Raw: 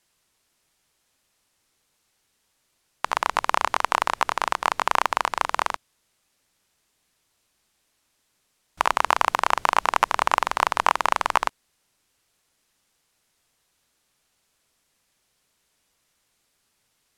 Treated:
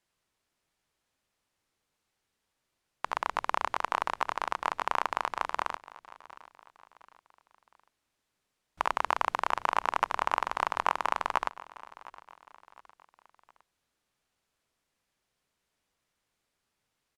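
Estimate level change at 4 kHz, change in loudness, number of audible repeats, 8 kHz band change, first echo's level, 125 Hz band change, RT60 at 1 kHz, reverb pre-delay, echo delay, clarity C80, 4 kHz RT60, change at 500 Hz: -10.5 dB, -8.0 dB, 3, -13.5 dB, -19.0 dB, -7.0 dB, none, none, 0.711 s, none, none, -7.0 dB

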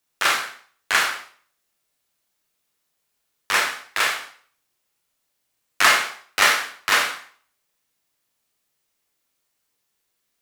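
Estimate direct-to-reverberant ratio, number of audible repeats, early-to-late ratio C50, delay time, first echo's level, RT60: 1.0 dB, none, 6.0 dB, none, none, 0.45 s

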